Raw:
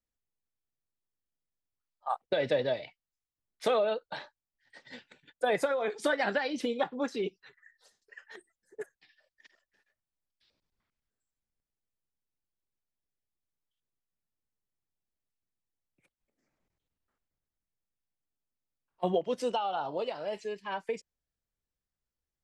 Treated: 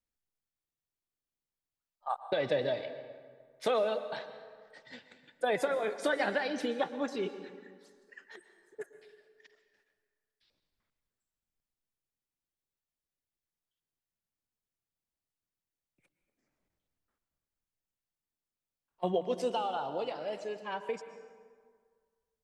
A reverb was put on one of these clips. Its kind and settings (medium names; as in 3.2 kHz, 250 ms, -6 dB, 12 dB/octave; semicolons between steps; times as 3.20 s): plate-style reverb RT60 1.8 s, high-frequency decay 0.6×, pre-delay 105 ms, DRR 10.5 dB; trim -2 dB